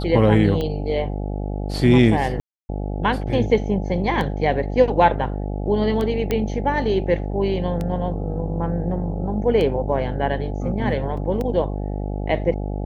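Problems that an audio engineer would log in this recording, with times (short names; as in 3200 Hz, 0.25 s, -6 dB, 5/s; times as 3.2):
buzz 50 Hz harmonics 17 -26 dBFS
tick 33 1/3 rpm -14 dBFS
2.4–2.69 gap 0.29 s
6.31 pop -9 dBFS
11.17 gap 4.6 ms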